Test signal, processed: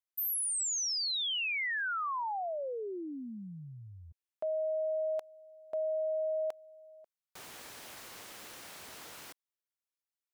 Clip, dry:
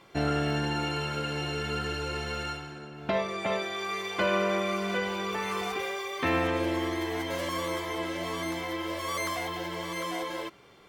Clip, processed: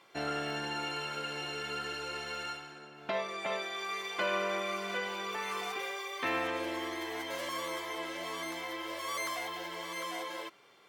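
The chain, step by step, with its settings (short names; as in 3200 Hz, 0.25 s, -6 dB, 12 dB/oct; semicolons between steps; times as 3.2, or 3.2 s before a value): HPF 600 Hz 6 dB/oct; gain -3 dB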